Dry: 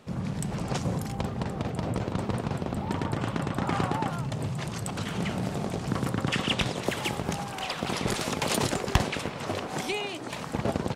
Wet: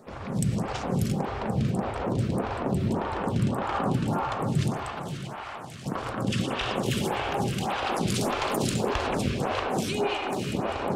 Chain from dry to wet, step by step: dynamic bell 2 kHz, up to -5 dB, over -48 dBFS, Q 4.1; in parallel at +2.5 dB: compressor with a negative ratio -32 dBFS; 4.75–5.86 s: on the sum: ladder high-pass 690 Hz, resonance 25%; reverberation RT60 4.1 s, pre-delay 68 ms, DRR -0.5 dB; lamp-driven phase shifter 1.7 Hz; trim -3.5 dB

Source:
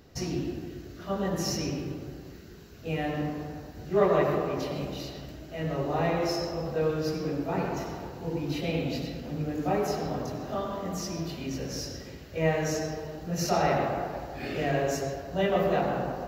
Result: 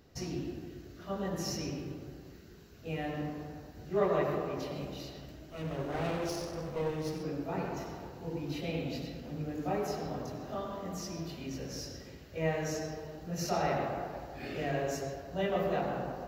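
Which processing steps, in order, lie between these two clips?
5.50–7.23 s: comb filter that takes the minimum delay 0.32 ms; trim -6 dB

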